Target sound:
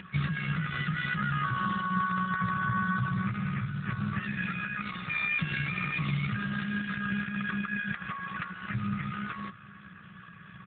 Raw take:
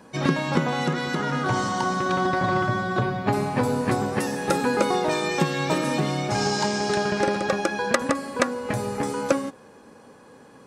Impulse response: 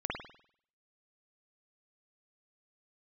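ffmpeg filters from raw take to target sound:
-filter_complex "[0:a]asoftclip=type=tanh:threshold=0.316,acompressor=mode=upward:threshold=0.01:ratio=2.5,asplit=3[s0][s1][s2];[s0]afade=t=out:st=4.22:d=0.02[s3];[s1]equalizer=f=2400:w=6.6:g=7.5,afade=t=in:st=4.22:d=0.02,afade=t=out:st=6.25:d=0.02[s4];[s2]afade=t=in:st=6.25:d=0.02[s5];[s3][s4][s5]amix=inputs=3:normalize=0,acompressor=threshold=0.0562:ratio=16,tremolo=f=62:d=0.571,asplit=2[s6][s7];[s7]adelay=401,lowpass=f=2200:p=1,volume=0.106,asplit=2[s8][s9];[s9]adelay=401,lowpass=f=2200:p=1,volume=0.22[s10];[s6][s8][s10]amix=inputs=3:normalize=0,alimiter=limit=0.0631:level=0:latency=1:release=95,afftfilt=real='re*(1-between(b*sr/4096,210,1100))':imag='im*(1-between(b*sr/4096,210,1100))':win_size=4096:overlap=0.75,volume=2.66" -ar 8000 -c:a libopencore_amrnb -b:a 7950

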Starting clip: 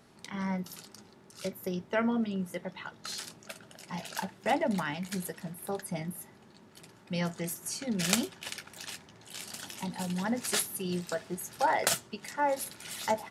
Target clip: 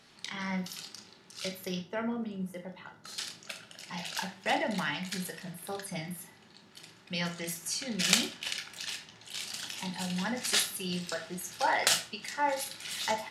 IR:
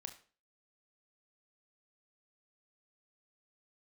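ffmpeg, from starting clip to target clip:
-filter_complex "[0:a]asetnsamples=n=441:p=0,asendcmd='1.81 equalizer g -2.5;3.18 equalizer g 11',equalizer=f=3600:w=0.46:g=13.5[s0];[1:a]atrim=start_sample=2205[s1];[s0][s1]afir=irnorm=-1:irlink=0"

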